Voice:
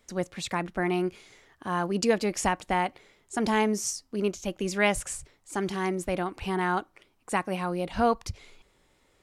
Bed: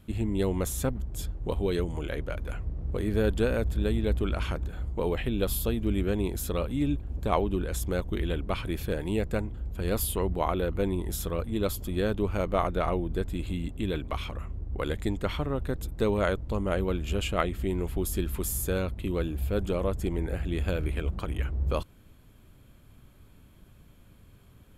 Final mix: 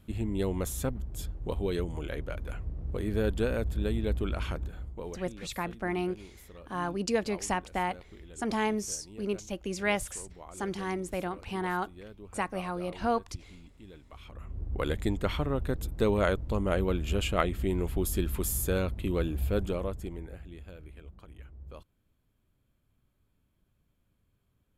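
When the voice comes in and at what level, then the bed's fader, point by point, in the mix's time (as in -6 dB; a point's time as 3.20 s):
5.05 s, -4.5 dB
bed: 4.64 s -3 dB
5.50 s -20 dB
14.08 s -20 dB
14.61 s 0 dB
19.54 s 0 dB
20.67 s -18.5 dB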